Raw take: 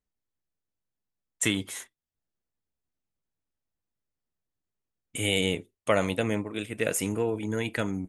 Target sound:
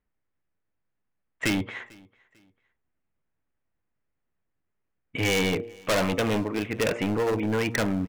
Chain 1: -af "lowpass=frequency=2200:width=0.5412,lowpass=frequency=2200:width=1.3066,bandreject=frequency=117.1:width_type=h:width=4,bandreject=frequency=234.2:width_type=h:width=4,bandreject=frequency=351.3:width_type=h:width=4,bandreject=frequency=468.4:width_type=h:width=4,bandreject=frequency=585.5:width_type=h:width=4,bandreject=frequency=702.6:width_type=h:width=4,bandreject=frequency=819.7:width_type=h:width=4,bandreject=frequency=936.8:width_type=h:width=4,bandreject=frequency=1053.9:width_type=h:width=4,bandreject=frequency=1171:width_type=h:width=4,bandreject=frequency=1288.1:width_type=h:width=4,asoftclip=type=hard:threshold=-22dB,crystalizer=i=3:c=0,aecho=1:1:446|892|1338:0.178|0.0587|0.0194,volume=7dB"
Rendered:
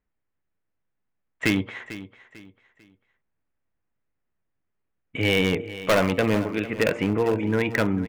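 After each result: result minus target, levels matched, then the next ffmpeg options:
echo-to-direct +11 dB; hard clipping: distortion −6 dB
-af "lowpass=frequency=2200:width=0.5412,lowpass=frequency=2200:width=1.3066,bandreject=frequency=117.1:width_type=h:width=4,bandreject=frequency=234.2:width_type=h:width=4,bandreject=frequency=351.3:width_type=h:width=4,bandreject=frequency=468.4:width_type=h:width=4,bandreject=frequency=585.5:width_type=h:width=4,bandreject=frequency=702.6:width_type=h:width=4,bandreject=frequency=819.7:width_type=h:width=4,bandreject=frequency=936.8:width_type=h:width=4,bandreject=frequency=1053.9:width_type=h:width=4,bandreject=frequency=1171:width_type=h:width=4,bandreject=frequency=1288.1:width_type=h:width=4,asoftclip=type=hard:threshold=-22dB,crystalizer=i=3:c=0,aecho=1:1:446|892:0.0501|0.0165,volume=7dB"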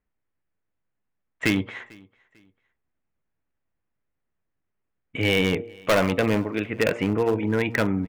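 hard clipping: distortion −6 dB
-af "lowpass=frequency=2200:width=0.5412,lowpass=frequency=2200:width=1.3066,bandreject=frequency=117.1:width_type=h:width=4,bandreject=frequency=234.2:width_type=h:width=4,bandreject=frequency=351.3:width_type=h:width=4,bandreject=frequency=468.4:width_type=h:width=4,bandreject=frequency=585.5:width_type=h:width=4,bandreject=frequency=702.6:width_type=h:width=4,bandreject=frequency=819.7:width_type=h:width=4,bandreject=frequency=936.8:width_type=h:width=4,bandreject=frequency=1053.9:width_type=h:width=4,bandreject=frequency=1171:width_type=h:width=4,bandreject=frequency=1288.1:width_type=h:width=4,asoftclip=type=hard:threshold=-28.5dB,crystalizer=i=3:c=0,aecho=1:1:446|892:0.0501|0.0165,volume=7dB"

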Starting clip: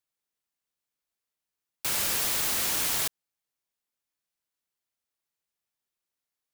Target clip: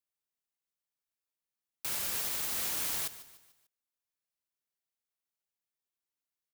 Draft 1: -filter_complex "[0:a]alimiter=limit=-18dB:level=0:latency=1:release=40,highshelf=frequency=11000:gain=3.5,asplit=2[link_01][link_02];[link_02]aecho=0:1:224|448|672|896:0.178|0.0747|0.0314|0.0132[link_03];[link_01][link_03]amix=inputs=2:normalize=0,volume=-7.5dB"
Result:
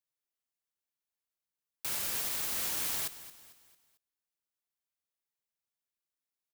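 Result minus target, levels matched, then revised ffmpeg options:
echo 76 ms late
-filter_complex "[0:a]alimiter=limit=-18dB:level=0:latency=1:release=40,highshelf=frequency=11000:gain=3.5,asplit=2[link_01][link_02];[link_02]aecho=0:1:148|296|444|592:0.178|0.0747|0.0314|0.0132[link_03];[link_01][link_03]amix=inputs=2:normalize=0,volume=-7.5dB"

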